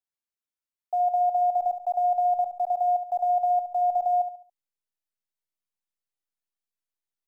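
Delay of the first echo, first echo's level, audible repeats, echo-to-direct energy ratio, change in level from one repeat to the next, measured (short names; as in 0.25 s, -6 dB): 70 ms, -10.0 dB, 3, -9.5 dB, -8.5 dB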